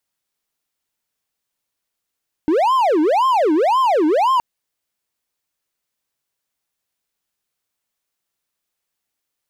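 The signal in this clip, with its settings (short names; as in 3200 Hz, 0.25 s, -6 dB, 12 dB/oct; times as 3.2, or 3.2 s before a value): siren wail 301–1060 Hz 1.9/s triangle -10.5 dBFS 1.92 s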